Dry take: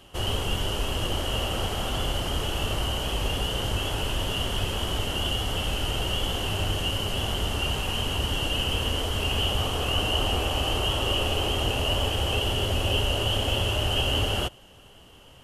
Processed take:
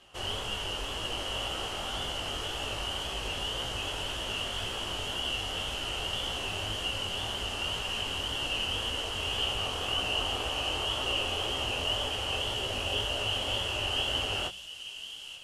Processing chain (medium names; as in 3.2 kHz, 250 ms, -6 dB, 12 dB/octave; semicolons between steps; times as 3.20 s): low-pass 8.7 kHz 12 dB/octave; bass shelf 440 Hz -10 dB; de-hum 63.01 Hz, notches 3; on a send: feedback echo behind a high-pass 886 ms, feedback 60%, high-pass 3.4 kHz, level -8 dB; on the sum: chorus 1.9 Hz, delay 15.5 ms, depth 7.6 ms